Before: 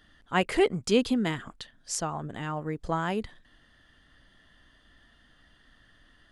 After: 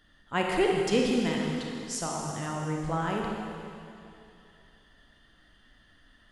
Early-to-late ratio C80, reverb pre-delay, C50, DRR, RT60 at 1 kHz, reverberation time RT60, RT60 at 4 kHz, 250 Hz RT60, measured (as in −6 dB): 1.5 dB, 27 ms, 0.0 dB, −1.0 dB, 2.7 s, 2.7 s, 2.6 s, 2.6 s